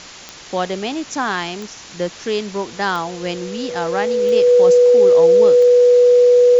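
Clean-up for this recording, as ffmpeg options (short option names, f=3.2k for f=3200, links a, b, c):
-af "adeclick=t=4,bandreject=f=490:w=30,afwtdn=0.02"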